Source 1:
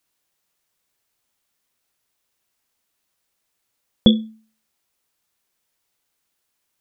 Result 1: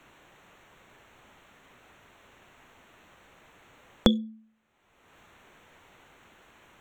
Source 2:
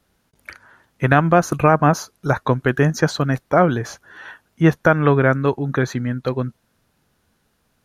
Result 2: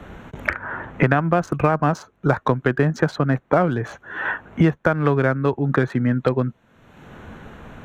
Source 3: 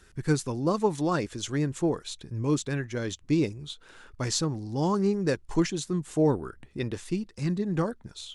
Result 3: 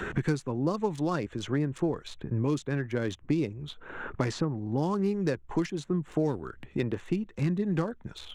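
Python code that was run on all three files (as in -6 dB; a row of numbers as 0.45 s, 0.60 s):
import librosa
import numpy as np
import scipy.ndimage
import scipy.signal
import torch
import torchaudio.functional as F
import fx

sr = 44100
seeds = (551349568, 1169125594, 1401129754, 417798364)

y = fx.wiener(x, sr, points=9)
y = fx.high_shelf(y, sr, hz=7100.0, db=-9.0)
y = fx.band_squash(y, sr, depth_pct=100)
y = y * librosa.db_to_amplitude(-2.5)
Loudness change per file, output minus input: -8.5 LU, -3.0 LU, -2.0 LU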